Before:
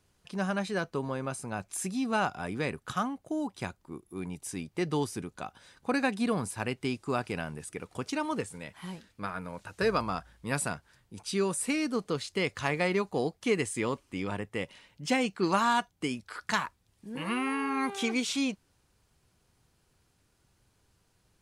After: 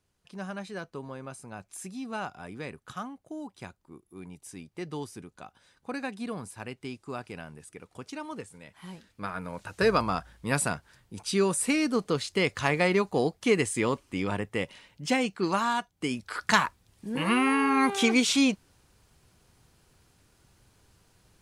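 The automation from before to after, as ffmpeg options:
-af "volume=14dB,afade=t=in:st=8.64:d=1.1:silence=0.298538,afade=t=out:st=14.51:d=1.39:silence=0.446684,afade=t=in:st=15.9:d=0.49:silence=0.316228"

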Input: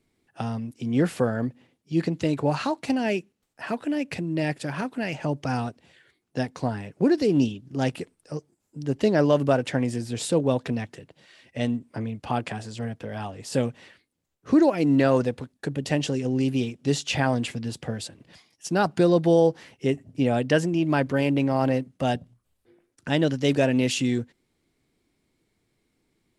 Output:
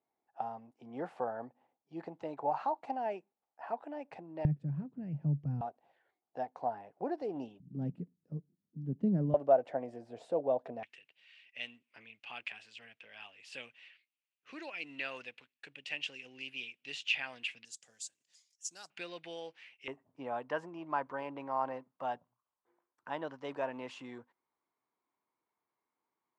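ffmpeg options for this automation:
-af "asetnsamples=n=441:p=0,asendcmd='4.45 bandpass f 150;5.61 bandpass f 770;7.6 bandpass f 180;9.34 bandpass f 670;10.83 bandpass f 2600;17.65 bandpass f 7000;18.9 bandpass f 2500;19.88 bandpass f 1000',bandpass=f=810:t=q:w=4.3:csg=0"

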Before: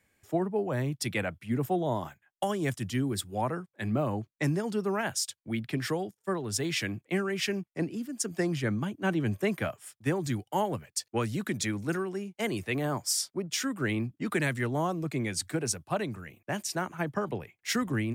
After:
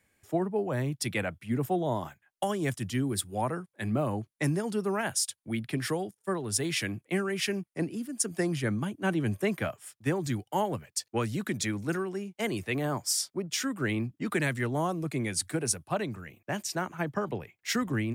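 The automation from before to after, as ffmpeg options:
-af "asetnsamples=n=441:p=0,asendcmd='3.09 equalizer g 10;9.43 equalizer g 1;14.76 equalizer g 9;15.88 equalizer g -3',equalizer=f=10k:t=o:w=0.3:g=3.5"

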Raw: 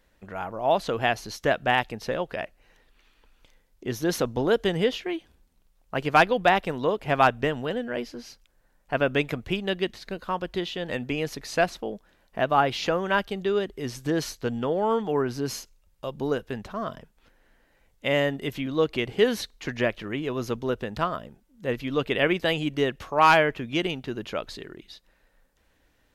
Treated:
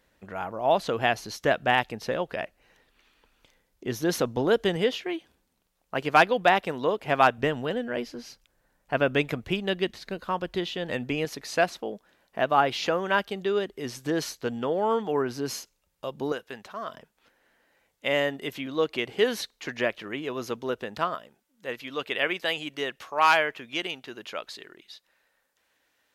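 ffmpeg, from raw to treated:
-af "asetnsamples=n=441:p=0,asendcmd='4.76 highpass f 210;7.38 highpass f 61;11.25 highpass f 220;16.32 highpass f 840;16.94 highpass f 370;21.15 highpass f 930',highpass=f=88:p=1"

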